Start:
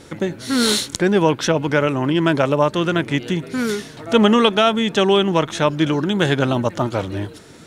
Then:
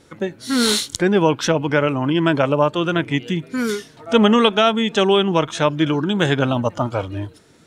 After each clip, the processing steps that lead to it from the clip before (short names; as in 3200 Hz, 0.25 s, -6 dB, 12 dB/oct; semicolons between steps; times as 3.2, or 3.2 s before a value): spectral noise reduction 9 dB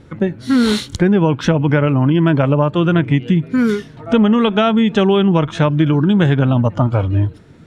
tone controls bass +11 dB, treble -12 dB; compressor, threshold -13 dBFS, peak gain reduction 8.5 dB; gain +3.5 dB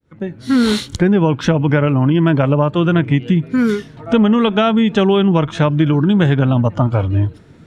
opening faded in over 0.53 s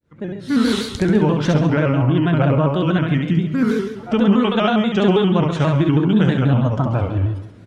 on a send: feedback echo 68 ms, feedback 47%, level -3.5 dB; on the sum: plate-style reverb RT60 1.3 s, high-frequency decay 0.95×, DRR 11.5 dB; shaped vibrato square 6.2 Hz, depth 100 cents; gain -5 dB